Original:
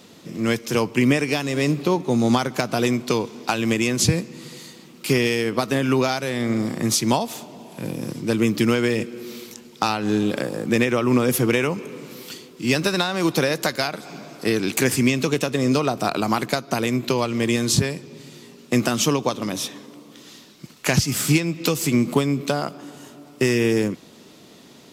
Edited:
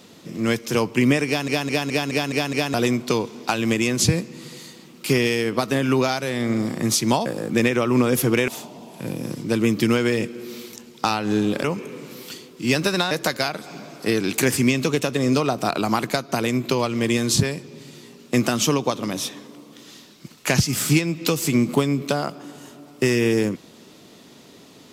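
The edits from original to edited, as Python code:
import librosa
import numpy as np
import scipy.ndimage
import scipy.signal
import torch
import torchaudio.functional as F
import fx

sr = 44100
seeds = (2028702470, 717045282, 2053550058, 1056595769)

y = fx.edit(x, sr, fx.stutter_over(start_s=1.27, slice_s=0.21, count=7),
    fx.move(start_s=10.42, length_s=1.22, to_s=7.26),
    fx.cut(start_s=13.11, length_s=0.39), tone=tone)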